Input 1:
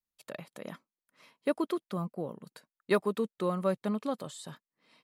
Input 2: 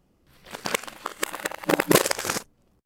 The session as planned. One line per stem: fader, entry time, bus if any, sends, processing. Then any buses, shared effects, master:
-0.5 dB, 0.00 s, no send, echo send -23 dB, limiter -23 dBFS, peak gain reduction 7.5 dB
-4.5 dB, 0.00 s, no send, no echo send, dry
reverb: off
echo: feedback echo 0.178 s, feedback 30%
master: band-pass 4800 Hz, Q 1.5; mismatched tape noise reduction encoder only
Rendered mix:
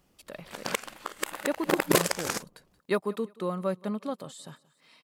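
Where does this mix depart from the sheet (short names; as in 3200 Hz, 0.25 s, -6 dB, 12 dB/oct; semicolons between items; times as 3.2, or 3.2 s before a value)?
stem 1: missing limiter -23 dBFS, peak gain reduction 7.5 dB; master: missing band-pass 4800 Hz, Q 1.5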